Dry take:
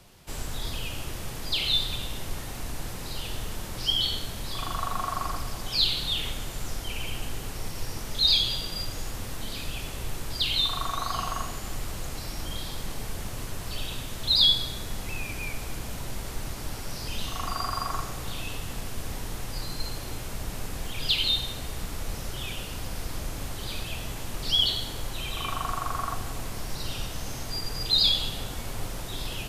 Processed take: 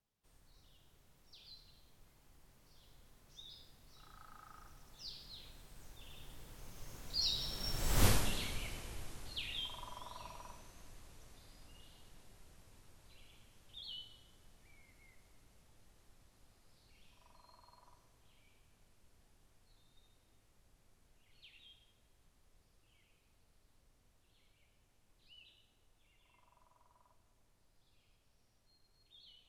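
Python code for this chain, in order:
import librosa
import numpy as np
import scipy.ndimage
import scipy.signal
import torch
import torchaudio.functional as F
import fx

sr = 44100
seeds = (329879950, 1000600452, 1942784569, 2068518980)

y = fx.doppler_pass(x, sr, speed_mps=44, closest_m=3.0, pass_at_s=8.06)
y = F.gain(torch.from_numpy(y), 8.5).numpy()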